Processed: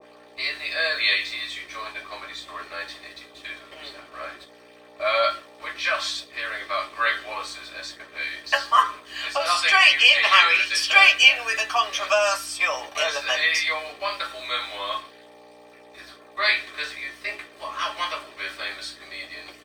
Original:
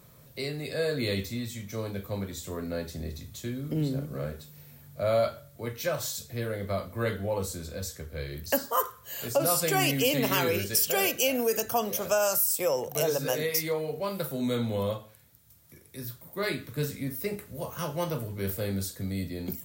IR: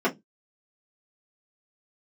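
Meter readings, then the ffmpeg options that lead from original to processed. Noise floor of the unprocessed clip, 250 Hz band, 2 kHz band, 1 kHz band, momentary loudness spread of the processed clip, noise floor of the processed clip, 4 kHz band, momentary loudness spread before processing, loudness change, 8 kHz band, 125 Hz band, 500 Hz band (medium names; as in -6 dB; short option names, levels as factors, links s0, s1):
-55 dBFS, -15.5 dB, +16.0 dB, +10.0 dB, 21 LU, -49 dBFS, +13.5 dB, 13 LU, +9.0 dB, -2.5 dB, under -20 dB, -2.0 dB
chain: -filter_complex "[0:a]lowpass=3500,agate=range=0.447:threshold=0.00562:ratio=16:detection=peak,highpass=f=1000:w=0.5412,highpass=f=1000:w=1.3066,highshelf=f=2300:g=8.5,acontrast=28,aeval=exprs='val(0)+0.00447*(sin(2*PI*60*n/s)+sin(2*PI*2*60*n/s)/2+sin(2*PI*3*60*n/s)/3+sin(2*PI*4*60*n/s)/4+sin(2*PI*5*60*n/s)/5)':c=same,aeval=exprs='val(0)*gte(abs(val(0)),0.00668)':c=same,asplit=2[s0][s1];[s1]adelay=14,volume=0.299[s2];[s0][s2]amix=inputs=2:normalize=0[s3];[1:a]atrim=start_sample=2205,asetrate=70560,aresample=44100[s4];[s3][s4]afir=irnorm=-1:irlink=0,adynamicequalizer=threshold=0.0355:dfrequency=1700:dqfactor=0.7:tfrequency=1700:tqfactor=0.7:attack=5:release=100:ratio=0.375:range=3:mode=boostabove:tftype=highshelf,volume=0.531"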